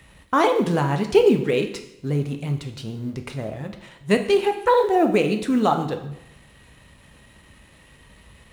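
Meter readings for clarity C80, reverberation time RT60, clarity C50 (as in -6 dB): 12.5 dB, 0.85 s, 9.5 dB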